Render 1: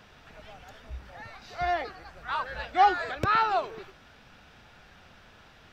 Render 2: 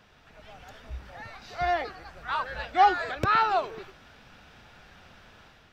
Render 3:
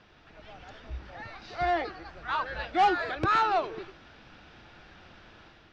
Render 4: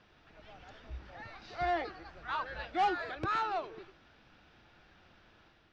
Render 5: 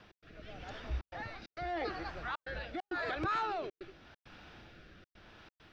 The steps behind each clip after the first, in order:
AGC gain up to 6 dB; gain -4.5 dB
LPF 5600 Hz 24 dB/oct; bell 330 Hz +9 dB 0.26 oct; soft clip -16.5 dBFS, distortion -14 dB
vocal rider within 3 dB 2 s; gain -6.5 dB
limiter -35 dBFS, peak gain reduction 11.5 dB; step gate "x.xxxxxxx.xx" 134 bpm -60 dB; rotary speaker horn 0.85 Hz; gain +8.5 dB

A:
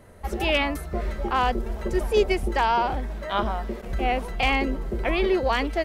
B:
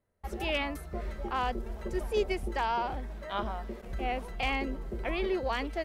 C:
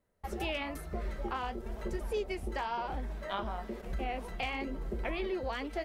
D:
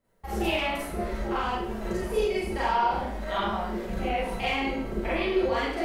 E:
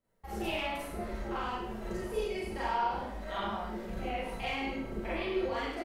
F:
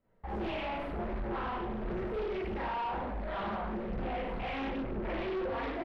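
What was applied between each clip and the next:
gate with hold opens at -34 dBFS; gain -8.5 dB
compressor, threshold -33 dBFS, peak gain reduction 9.5 dB; flange 1 Hz, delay 3.6 ms, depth 9.5 ms, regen -57%; gain +5.5 dB
Schroeder reverb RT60 0.61 s, combs from 33 ms, DRR -8.5 dB
loudspeakers at several distances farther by 19 m -12 dB, 36 m -11 dB; gain -7.5 dB
soft clip -37.5 dBFS, distortion -8 dB; air absorption 410 m; Doppler distortion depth 0.49 ms; gain +7 dB

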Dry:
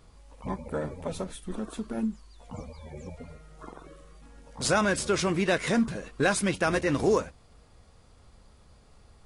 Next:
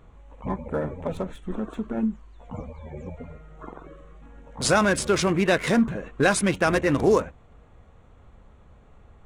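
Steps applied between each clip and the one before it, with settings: Wiener smoothing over 9 samples; gain +4.5 dB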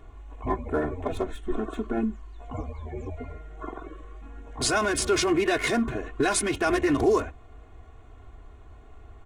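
limiter -17 dBFS, peak gain reduction 8 dB; comb 2.8 ms, depth 100%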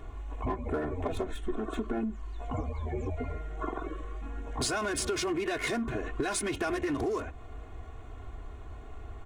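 in parallel at -4 dB: soft clip -28.5 dBFS, distortion -7 dB; on the sum: compressor 6:1, threshold -29 dBFS, peak gain reduction 12.5 dB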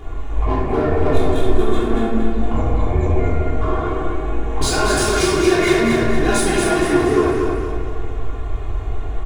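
in parallel at -3.5 dB: soft clip -37 dBFS, distortion -8 dB; on the sum: feedback echo 0.233 s, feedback 44%, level -4.5 dB; shoebox room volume 720 m³, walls mixed, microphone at 3.8 m; gain +2 dB

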